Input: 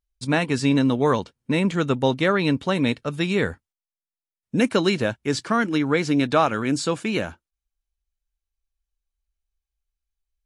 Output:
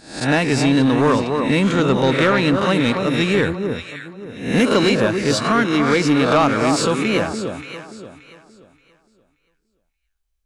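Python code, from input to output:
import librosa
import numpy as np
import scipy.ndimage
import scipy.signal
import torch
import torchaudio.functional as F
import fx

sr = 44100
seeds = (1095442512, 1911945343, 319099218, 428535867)

y = fx.spec_swells(x, sr, rise_s=0.51)
y = fx.echo_alternate(y, sr, ms=289, hz=1300.0, feedback_pct=52, wet_db=-6.0)
y = 10.0 ** (-12.0 / 20.0) * np.tanh(y / 10.0 ** (-12.0 / 20.0))
y = y * 10.0 ** (4.5 / 20.0)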